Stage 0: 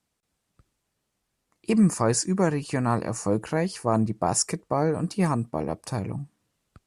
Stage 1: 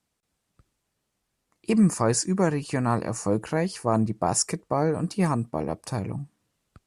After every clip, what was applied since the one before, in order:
no processing that can be heard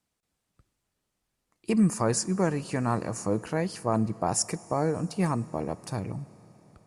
convolution reverb RT60 4.7 s, pre-delay 25 ms, DRR 19 dB
level −3 dB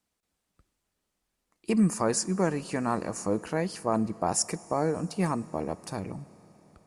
parametric band 120 Hz −9.5 dB 0.46 octaves

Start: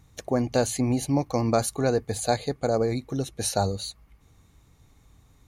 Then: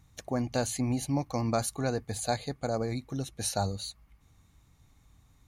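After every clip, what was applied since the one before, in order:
parametric band 430 Hz −6 dB 0.84 octaves
level −4 dB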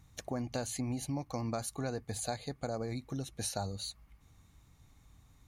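downward compressor 2.5 to 1, threshold −36 dBFS, peak gain reduction 9.5 dB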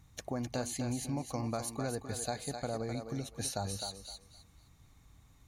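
feedback echo with a high-pass in the loop 258 ms, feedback 24%, high-pass 310 Hz, level −6 dB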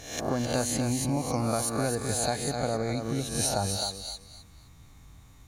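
peak hold with a rise ahead of every peak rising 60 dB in 0.63 s
level +6.5 dB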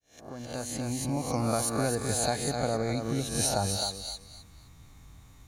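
fade in at the beginning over 1.50 s

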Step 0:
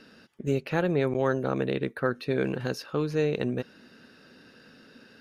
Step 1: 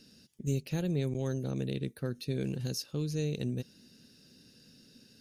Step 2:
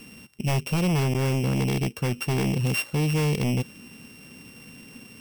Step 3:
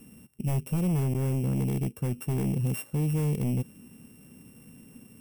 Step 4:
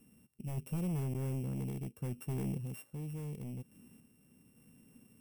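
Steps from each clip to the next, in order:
drawn EQ curve 140 Hz 0 dB, 1,300 Hz −21 dB, 6,300 Hz +6 dB
samples sorted by size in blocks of 16 samples; sine wavefolder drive 9 dB, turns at −19.5 dBFS
drawn EQ curve 210 Hz 0 dB, 4,800 Hz −16 dB, 9,900 Hz 0 dB; level −2.5 dB
sample-and-hold tremolo; level −8.5 dB

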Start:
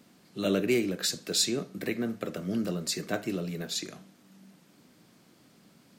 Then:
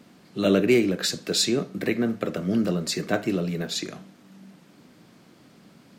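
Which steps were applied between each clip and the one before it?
high-shelf EQ 5,400 Hz −8.5 dB
level +7 dB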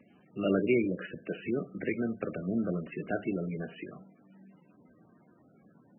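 level −7 dB
MP3 8 kbit/s 22,050 Hz

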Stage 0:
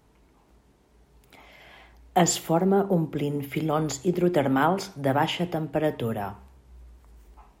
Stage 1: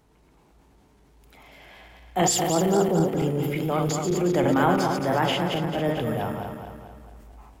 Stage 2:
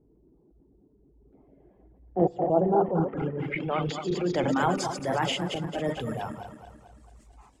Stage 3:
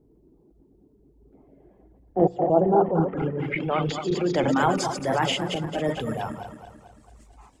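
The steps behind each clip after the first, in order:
feedback delay that plays each chunk backwards 111 ms, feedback 71%, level −4.5 dB; transient designer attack −6 dB, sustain +3 dB
reverb reduction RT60 1.2 s; low-pass filter sweep 360 Hz → 8,100 Hz, 0:01.99–0:04.77; level −2.5 dB
mains-hum notches 60/120/180 Hz; level +3.5 dB

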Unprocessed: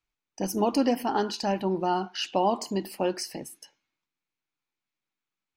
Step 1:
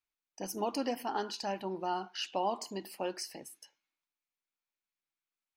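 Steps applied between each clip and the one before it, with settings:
low-shelf EQ 320 Hz −10 dB
level −6 dB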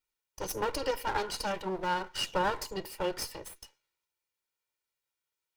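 lower of the sound and its delayed copy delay 2.1 ms
level +5.5 dB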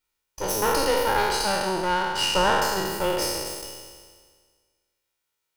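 peak hold with a decay on every bin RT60 1.70 s
level +5 dB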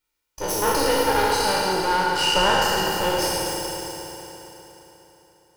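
feedback delay network reverb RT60 3.8 s, high-frequency decay 0.9×, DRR 1 dB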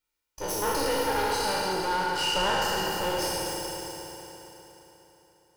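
soft clipping −13.5 dBFS, distortion −19 dB
level −5 dB

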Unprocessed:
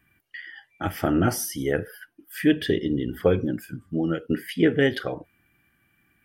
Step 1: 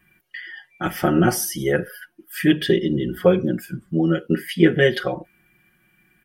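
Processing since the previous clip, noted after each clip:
comb filter 5.5 ms, depth 89%
level +2.5 dB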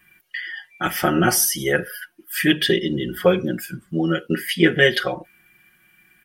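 tilt shelving filter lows −5 dB, about 910 Hz
level +2 dB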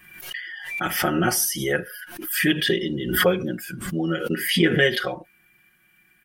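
background raised ahead of every attack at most 62 dB per second
level −4 dB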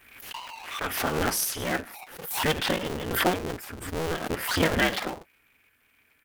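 sub-harmonics by changed cycles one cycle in 2, inverted
level −5 dB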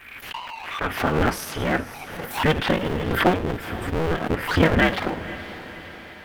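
bass and treble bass +4 dB, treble −14 dB
feedback delay with all-pass diffusion 509 ms, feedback 43%, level −15.5 dB
one half of a high-frequency compander encoder only
level +5 dB

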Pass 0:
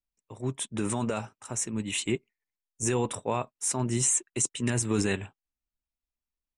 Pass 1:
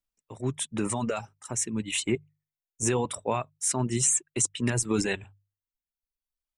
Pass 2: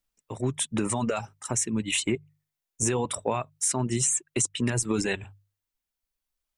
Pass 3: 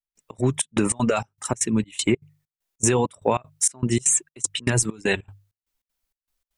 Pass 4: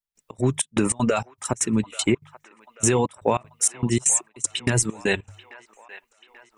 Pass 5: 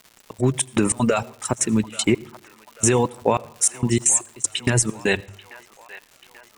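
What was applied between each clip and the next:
reverb reduction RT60 1.1 s; mains-hum notches 50/100/150 Hz; level +2 dB
downward compressor 3 to 1, threshold −31 dBFS, peak gain reduction 8.5 dB; level +6.5 dB
gate pattern "..xx.xxx" 196 BPM −24 dB; level +6.5 dB
delay with a band-pass on its return 837 ms, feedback 57%, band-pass 1,400 Hz, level −15.5 dB
surface crackle 230 per second −37 dBFS; on a send at −23 dB: convolution reverb RT60 0.65 s, pre-delay 76 ms; on the sum: level +2 dB

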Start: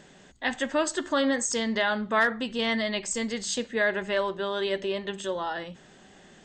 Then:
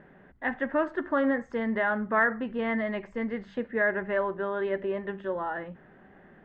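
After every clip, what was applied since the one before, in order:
Chebyshev low-pass filter 1,800 Hz, order 3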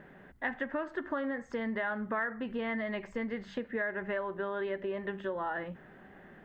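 downward compressor 6 to 1, threshold −32 dBFS, peak gain reduction 12 dB
high-shelf EQ 3,300 Hz +9 dB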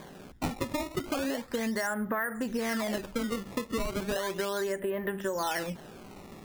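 sample-and-hold swept by an LFO 16×, swing 160% 0.35 Hz
downward compressor, threshold −34 dBFS, peak gain reduction 6 dB
level +6.5 dB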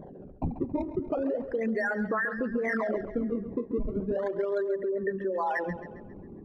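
spectral envelope exaggerated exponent 3
tape delay 137 ms, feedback 51%, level −11 dB, low-pass 5,600 Hz
level +2 dB

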